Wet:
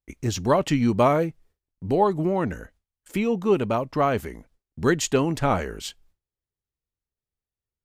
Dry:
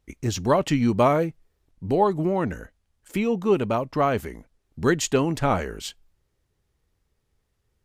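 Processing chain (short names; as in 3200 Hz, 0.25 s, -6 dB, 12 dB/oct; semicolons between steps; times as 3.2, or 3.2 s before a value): gate with hold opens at -51 dBFS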